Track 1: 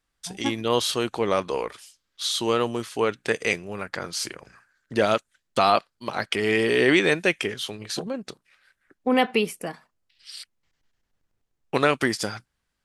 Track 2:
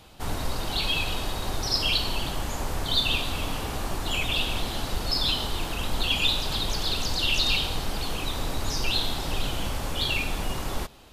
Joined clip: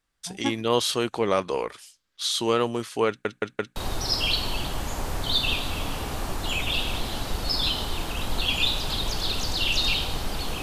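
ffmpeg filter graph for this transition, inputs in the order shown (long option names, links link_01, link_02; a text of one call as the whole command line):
ffmpeg -i cue0.wav -i cue1.wav -filter_complex "[0:a]apad=whole_dur=10.62,atrim=end=10.62,asplit=4[link_01][link_02][link_03][link_04];[link_01]atrim=end=3.252[link_05];[link_02]atrim=start=3.078:end=3.252[link_06];[link_03]atrim=start=3.078:end=3.252[link_07];[link_04]atrim=start=3.078:end=3.252[link_08];[1:a]atrim=start=1.378:end=8.24[link_09];[link_05][link_06]acrossfade=duration=0.004:curve1=hsin:curve2=hsin[link_10];[link_10][link_07]acrossfade=duration=0.004:curve1=hsin:curve2=hsin[link_11];[link_11][link_08]acrossfade=duration=0.004:curve1=hsin:curve2=hsin[link_12];[link_12][link_09]acrossfade=duration=0.004:curve1=hsin:curve2=hsin" out.wav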